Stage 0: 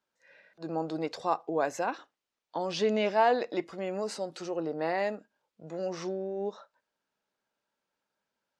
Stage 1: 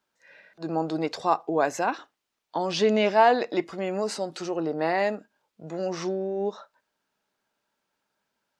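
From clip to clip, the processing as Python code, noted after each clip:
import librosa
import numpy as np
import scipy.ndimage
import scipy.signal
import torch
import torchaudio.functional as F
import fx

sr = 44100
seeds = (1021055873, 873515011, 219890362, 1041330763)

y = fx.peak_eq(x, sr, hz=520.0, db=-5.0, octaves=0.21)
y = F.gain(torch.from_numpy(y), 6.0).numpy()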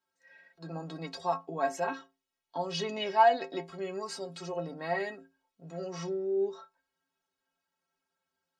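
y = fx.stiff_resonator(x, sr, f0_hz=80.0, decay_s=0.4, stiffness=0.03)
y = F.gain(torch.from_numpy(y), 3.0).numpy()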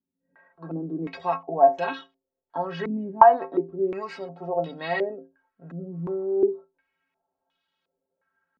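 y = fx.filter_held_lowpass(x, sr, hz=2.8, low_hz=240.0, high_hz=3400.0)
y = F.gain(torch.from_numpy(y), 3.5).numpy()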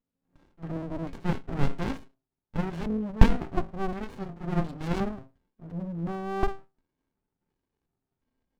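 y = fx.running_max(x, sr, window=65)
y = F.gain(torch.from_numpy(y), 1.5).numpy()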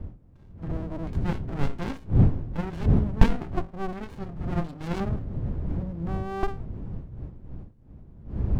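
y = fx.dmg_wind(x, sr, seeds[0], corner_hz=120.0, level_db=-28.0)
y = F.gain(torch.from_numpy(y), -1.0).numpy()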